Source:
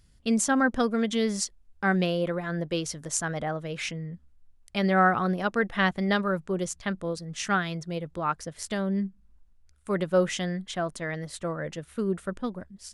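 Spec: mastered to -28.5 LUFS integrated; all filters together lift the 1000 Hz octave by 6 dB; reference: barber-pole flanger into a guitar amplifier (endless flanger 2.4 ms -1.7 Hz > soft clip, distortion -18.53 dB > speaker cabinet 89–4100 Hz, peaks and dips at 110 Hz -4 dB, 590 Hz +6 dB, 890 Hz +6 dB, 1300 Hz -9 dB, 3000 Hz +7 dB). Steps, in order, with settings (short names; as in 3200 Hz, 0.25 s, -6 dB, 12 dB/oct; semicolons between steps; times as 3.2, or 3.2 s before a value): bell 1000 Hz +7 dB; endless flanger 2.4 ms -1.7 Hz; soft clip -16 dBFS; speaker cabinet 89–4100 Hz, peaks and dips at 110 Hz -4 dB, 590 Hz +6 dB, 890 Hz +6 dB, 1300 Hz -9 dB, 3000 Hz +7 dB; gain +1 dB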